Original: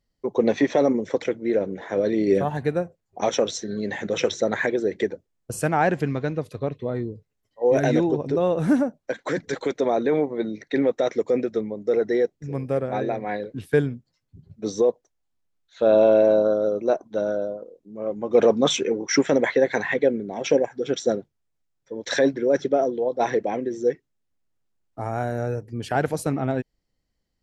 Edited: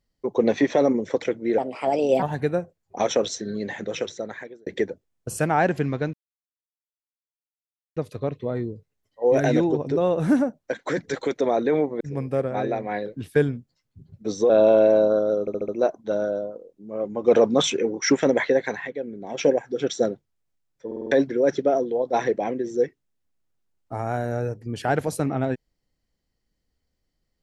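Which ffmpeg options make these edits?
-filter_complex "[0:a]asplit=18[a][b][c][d][e][f][g][h][i][j][k][l][m][n][o][p][q][r];[a]atrim=end=1.584[s];[b]atrim=start=1.58:end=2.45,asetpts=PTS-STARTPTS,asetrate=59535,aresample=44100[t];[c]atrim=start=2.446:end=4.89,asetpts=PTS-STARTPTS,afade=t=out:st=1.194:d=1.25[u];[d]atrim=start=4.89:end=6.36,asetpts=PTS-STARTPTS,afade=t=in:d=0.004:c=hsin,afade=t=out:st=1.466:d=0.004:c=hsin,apad=pad_dur=1.83[v];[e]atrim=start=6.36:end=10.402,asetpts=PTS-STARTPTS,afade=t=in:d=0.004:c=hsin[w];[f]atrim=start=12.378:end=14.872[x];[g]atrim=start=15.838:end=16.822[y];[h]atrim=start=16.748:end=16.822[z];[i]atrim=start=16.748:end=16.822[aa];[j]atrim=start=16.748:end=16.822[ab];[k]atrim=start=16.748:end=19.99,asetpts=PTS-STARTPTS,afade=t=out:st=2.782:d=0.46:silence=0.266073[ac];[l]atrim=start=19.99:end=20.08,asetpts=PTS-STARTPTS,volume=-11.5dB[ad];[m]atrim=start=20.08:end=21.982,asetpts=PTS-STARTPTS,afade=t=in:d=0.46:silence=0.266073[ae];[n]atrim=start=21.928:end=21.982[af];[o]atrim=start=21.928:end=21.982[ag];[p]atrim=start=21.928:end=21.982[ah];[q]atrim=start=21.928:end=21.982[ai];[r]atrim=start=22.178[aj];[s][t]acrossfade=d=0.004:c1=hsin:c2=hsin[ak];[u][v][w]concat=n=3:v=0:a=1[al];[ak][al]acrossfade=d=0.004:c1=hsin:c2=hsin[am];[am][x]acrossfade=d=0.004:c1=hsin:c2=hsin[an];[an][y]acrossfade=d=0.004:c1=hsin:c2=hsin[ao];[ao][z]acrossfade=d=0.004:c1=hsin:c2=hsin[ap];[ap][aa]acrossfade=d=0.004:c1=hsin:c2=hsin[aq];[aq][ab]acrossfade=d=0.004:c1=hsin:c2=hsin[ar];[ac][ad][ae]concat=n=3:v=0:a=1[as];[ar][as]acrossfade=d=0.004:c1=hsin:c2=hsin[at];[at][af]acrossfade=d=0.004:c1=hsin:c2=hsin[au];[au][ag]acrossfade=d=0.004:c1=hsin:c2=hsin[av];[av][ah]acrossfade=d=0.004:c1=hsin:c2=hsin[aw];[aw][ai]acrossfade=d=0.004:c1=hsin:c2=hsin[ax];[ax][aj]acrossfade=d=0.004:c1=hsin:c2=hsin"

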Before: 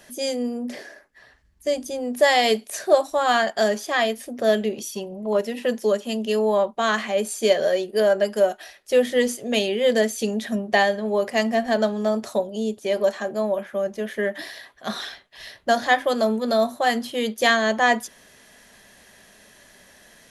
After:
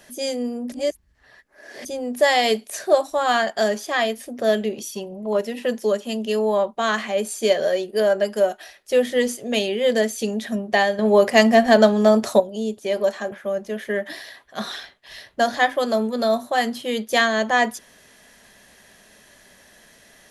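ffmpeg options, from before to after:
-filter_complex "[0:a]asplit=6[a][b][c][d][e][f];[a]atrim=end=0.722[g];[b]atrim=start=0.718:end=1.852,asetpts=PTS-STARTPTS,areverse[h];[c]atrim=start=1.848:end=10.992[i];[d]atrim=start=10.988:end=12.402,asetpts=PTS-STARTPTS,volume=7.5dB[j];[e]atrim=start=12.398:end=13.322[k];[f]atrim=start=13.608[l];[g][h]acrossfade=d=0.004:c1=hsin:c2=hsin[m];[m][i]acrossfade=d=0.004:c1=hsin:c2=hsin[n];[n][j]acrossfade=d=0.004:c1=hsin:c2=hsin[o];[o][k]acrossfade=d=0.004:c1=hsin:c2=hsin[p];[p][l]acrossfade=d=0.004:c1=hsin:c2=hsin"

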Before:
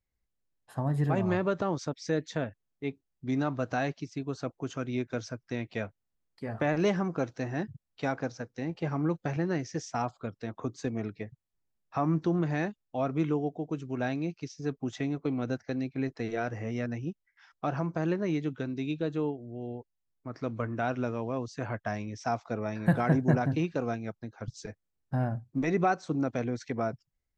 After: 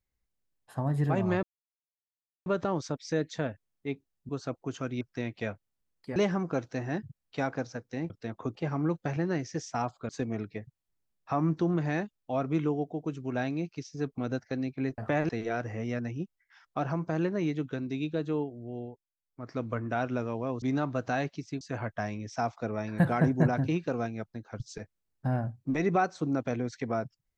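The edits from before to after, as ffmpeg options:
-filter_complex "[0:a]asplit=15[a][b][c][d][e][f][g][h][i][j][k][l][m][n][o];[a]atrim=end=1.43,asetpts=PTS-STARTPTS,afade=t=out:st=1.426:d=0.004:c=hsin,apad=pad_dur=1.03[p];[b]atrim=start=1.43:end=3.262,asetpts=PTS-STARTPTS,afade=t=in:d=0.004:c=hsin[q];[c]atrim=start=4.248:end=4.972[r];[d]atrim=start=5.348:end=6.502[s];[e]atrim=start=6.808:end=8.752[t];[f]atrim=start=10.288:end=10.742[u];[g]atrim=start=8.748:end=10.292[v];[h]atrim=start=10.738:end=14.832[w];[i]atrim=start=15.358:end=16.162[x];[j]atrim=start=6.498:end=6.812[y];[k]atrim=start=16.158:end=19.92,asetpts=PTS-STARTPTS,afade=t=out:st=3.502:d=0.26:silence=0.211349[z];[l]atrim=start=19.92:end=20.1,asetpts=PTS-STARTPTS,volume=-13.5dB[aa];[m]atrim=start=20.1:end=21.492,asetpts=PTS-STARTPTS,afade=t=in:d=0.26:silence=0.211349[ab];[n]atrim=start=3.258:end=4.252[ac];[o]atrim=start=21.488[ad];[p][q]concat=n=2:v=0:a=1[ae];[ae][r]acrossfade=d=0.004:c1=hsin:c2=hsin[af];[af][s]acrossfade=d=0.004:c1=hsin:c2=hsin[ag];[ag][t]acrossfade=d=0.004:c1=hsin:c2=hsin[ah];[ah][u]acrossfade=d=0.004:c1=hsin:c2=hsin[ai];[ai][v]acrossfade=d=0.004:c1=hsin:c2=hsin[aj];[aj][w]acrossfade=d=0.004:c1=hsin:c2=hsin[ak];[ak][x]acrossfade=d=0.004:c1=hsin:c2=hsin[al];[al][y]acrossfade=d=0.004:c1=hsin:c2=hsin[am];[z][aa][ab]concat=n=3:v=0:a=1[an];[am][an]acrossfade=d=0.004:c1=hsin:c2=hsin[ao];[ao][ac]acrossfade=d=0.004:c1=hsin:c2=hsin[ap];[ap][ad]acrossfade=d=0.004:c1=hsin:c2=hsin"

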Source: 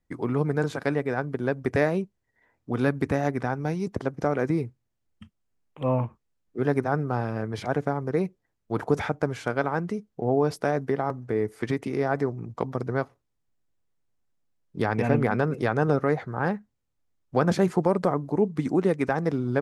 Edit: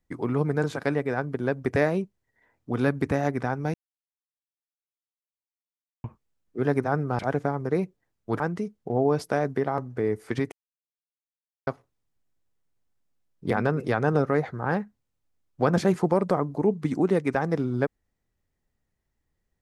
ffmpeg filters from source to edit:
-filter_complex "[0:a]asplit=8[a][b][c][d][e][f][g][h];[a]atrim=end=3.74,asetpts=PTS-STARTPTS,afade=t=out:st=3.736:d=0.004:c=hsin[i];[b]atrim=start=3.74:end=6.04,asetpts=PTS-STARTPTS,volume=0[j];[c]atrim=start=6.04:end=7.192,asetpts=PTS-STARTPTS,afade=t=in:d=0.004:c=hsin[k];[d]atrim=start=7.608:end=8.822[l];[e]atrim=start=9.718:end=11.84,asetpts=PTS-STARTPTS,afade=t=out:st=2.118:d=0.004:c=hsin[m];[f]atrim=start=11.84:end=12.99,asetpts=PTS-STARTPTS,volume=0[n];[g]atrim=start=12.99:end=14.832,asetpts=PTS-STARTPTS,afade=t=in:d=0.004:c=hsin[o];[h]atrim=start=15.248[p];[i][j][k]concat=n=3:v=0:a=1[q];[q][l]acrossfade=d=0.004:c1=hsin:c2=hsin[r];[m][n][o]concat=n=3:v=0:a=1[s];[r][s]acrossfade=d=0.004:c1=hsin:c2=hsin[t];[t][p]acrossfade=d=0.004:c1=hsin:c2=hsin"

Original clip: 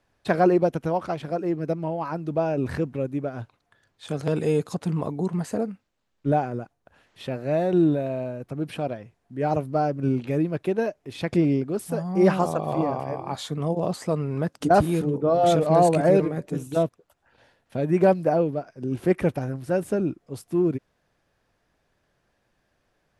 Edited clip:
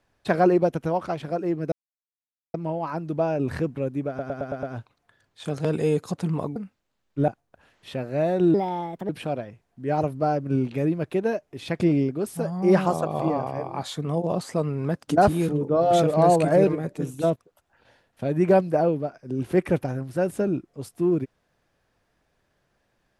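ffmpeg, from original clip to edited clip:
-filter_complex "[0:a]asplit=11[a][b][c][d][e][f][g][h][i][j][k];[a]atrim=end=1.72,asetpts=PTS-STARTPTS,afade=t=out:st=1.716:d=0.004:c=hsin,apad=pad_dur=0.82[l];[b]atrim=start=1.72:end=3.372,asetpts=PTS-STARTPTS,afade=t=in:d=0.004:c=hsin[m];[c]atrim=start=3.258:end=3.372[n];[d]atrim=start=3.258:end=3.372[o];[e]atrim=start=3.258:end=3.372[p];[f]atrim=start=3.258:end=3.372[q];[g]atrim=start=3.258:end=5.192[r];[h]atrim=start=5.638:end=6.362[s];[i]atrim=start=6.608:end=7.874[t];[j]atrim=start=7.87:end=8.62,asetpts=PTS-STARTPTS,asetrate=59976,aresample=44100[u];[k]atrim=start=8.616[v];[l][m]concat=n=2:v=0:a=1[w];[w][n]acrossfade=d=0.004:c1=hsin:c2=hsin[x];[x][o]acrossfade=d=0.004:c1=hsin:c2=hsin[y];[y][p]acrossfade=d=0.004:c1=hsin:c2=hsin[z];[z][q]acrossfade=d=0.004:c1=hsin:c2=hsin[aa];[aa][r]acrossfade=d=0.004:c1=hsin:c2=hsin[ab];[ab][s]acrossfade=d=0.004:c1=hsin:c2=hsin[ac];[ac][t]acrossfade=d=0.004:c1=hsin:c2=hsin[ad];[ad][u]acrossfade=d=0.004:c1=hsin:c2=hsin[ae];[ae][v]acrossfade=d=0.004:c1=hsin:c2=hsin"

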